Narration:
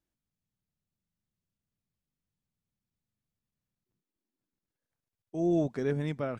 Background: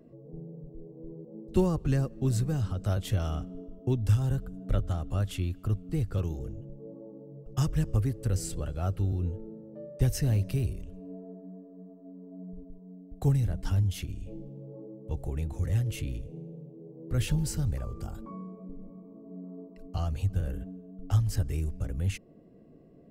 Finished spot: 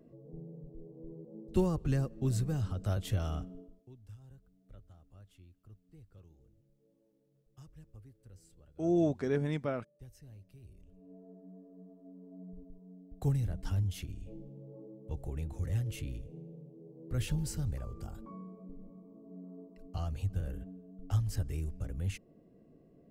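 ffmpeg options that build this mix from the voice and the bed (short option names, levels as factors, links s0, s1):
-filter_complex "[0:a]adelay=3450,volume=0.891[s0];[1:a]volume=7.5,afade=t=out:st=3.42:d=0.43:silence=0.0707946,afade=t=in:st=10.61:d=1.1:silence=0.0841395[s1];[s0][s1]amix=inputs=2:normalize=0"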